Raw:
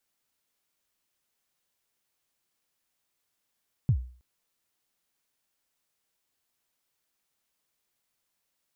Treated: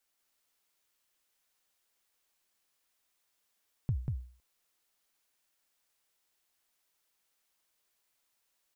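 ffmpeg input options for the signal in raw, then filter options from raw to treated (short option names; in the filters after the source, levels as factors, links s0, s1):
-f lavfi -i "aevalsrc='0.158*pow(10,-3*t/0.43)*sin(2*PI*(150*0.078/log(62/150)*(exp(log(62/150)*min(t,0.078)/0.078)-1)+62*max(t-0.078,0)))':d=0.32:s=44100"
-af "equalizer=f=140:t=o:w=2.3:g=-7.5,aecho=1:1:190:0.708"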